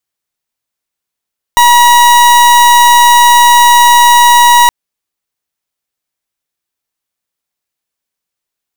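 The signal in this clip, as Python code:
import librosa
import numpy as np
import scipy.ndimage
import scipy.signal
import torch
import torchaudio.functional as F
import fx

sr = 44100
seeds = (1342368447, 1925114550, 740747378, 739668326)

y = fx.pulse(sr, length_s=3.12, hz=961.0, level_db=-4.5, duty_pct=39)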